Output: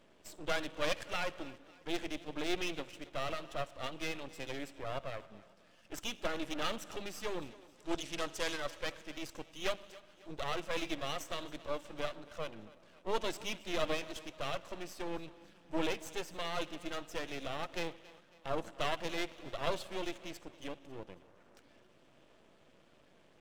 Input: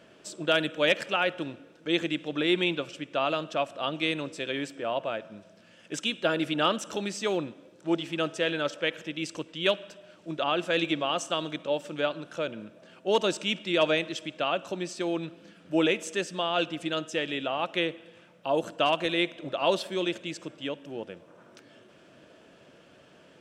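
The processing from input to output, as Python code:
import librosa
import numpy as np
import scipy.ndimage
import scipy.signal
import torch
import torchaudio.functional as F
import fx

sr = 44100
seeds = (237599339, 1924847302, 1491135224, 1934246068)

p1 = fx.spec_quant(x, sr, step_db=15)
p2 = np.maximum(p1, 0.0)
p3 = fx.peak_eq(p2, sr, hz=6900.0, db=8.5, octaves=2.6, at=(7.42, 8.6))
p4 = p3 + fx.echo_thinned(p3, sr, ms=274, feedback_pct=45, hz=200.0, wet_db=-19, dry=0)
y = p4 * 10.0 ** (-5.0 / 20.0)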